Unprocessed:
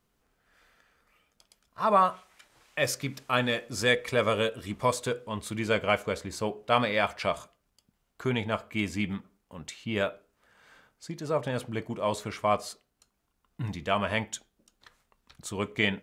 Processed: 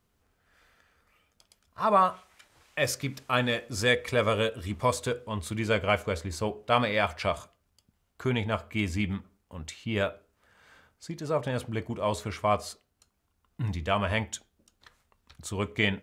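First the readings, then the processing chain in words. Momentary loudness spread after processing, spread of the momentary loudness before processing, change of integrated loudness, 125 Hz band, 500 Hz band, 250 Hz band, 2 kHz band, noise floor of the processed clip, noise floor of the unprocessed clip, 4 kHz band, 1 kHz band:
13 LU, 14 LU, +0.5 dB, +3.5 dB, 0.0 dB, +0.5 dB, 0.0 dB, -75 dBFS, -77 dBFS, 0.0 dB, 0.0 dB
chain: peaking EQ 82 Hz +12 dB 0.52 oct

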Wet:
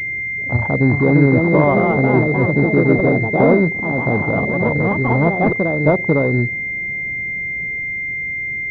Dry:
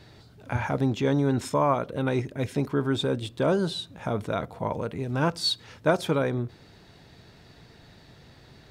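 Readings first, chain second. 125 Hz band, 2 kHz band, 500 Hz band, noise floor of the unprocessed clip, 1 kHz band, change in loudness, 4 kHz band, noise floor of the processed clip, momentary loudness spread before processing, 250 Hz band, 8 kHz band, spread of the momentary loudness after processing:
+12.0 dB, +20.0 dB, +10.5 dB, -53 dBFS, +8.5 dB, +11.0 dB, under -15 dB, -24 dBFS, 7 LU, +12.5 dB, under -15 dB, 8 LU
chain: local Wiener filter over 41 samples; in parallel at +1 dB: peak limiter -20.5 dBFS, peak gain reduction 12 dB; on the sum: distance through air 58 m; ever faster or slower copies 475 ms, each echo +3 st, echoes 3; class-D stage that switches slowly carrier 2.1 kHz; trim +5.5 dB

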